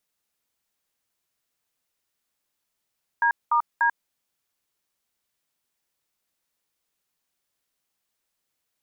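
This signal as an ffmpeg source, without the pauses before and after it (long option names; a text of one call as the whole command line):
ffmpeg -f lavfi -i "aevalsrc='0.1*clip(min(mod(t,0.294),0.09-mod(t,0.294))/0.002,0,1)*(eq(floor(t/0.294),0)*(sin(2*PI*941*mod(t,0.294))+sin(2*PI*1633*mod(t,0.294)))+eq(floor(t/0.294),1)*(sin(2*PI*941*mod(t,0.294))+sin(2*PI*1209*mod(t,0.294)))+eq(floor(t/0.294),2)*(sin(2*PI*941*mod(t,0.294))+sin(2*PI*1633*mod(t,0.294))))':duration=0.882:sample_rate=44100" out.wav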